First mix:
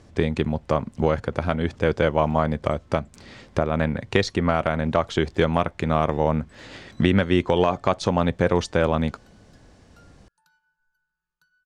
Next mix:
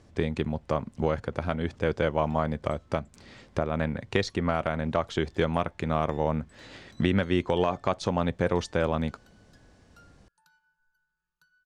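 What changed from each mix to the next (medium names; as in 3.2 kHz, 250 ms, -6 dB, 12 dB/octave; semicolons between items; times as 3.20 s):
speech -5.5 dB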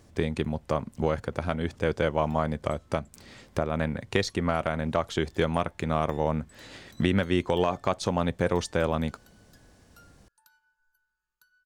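background: add peaking EQ 160 Hz -14 dB 0.41 oct; master: remove distance through air 61 m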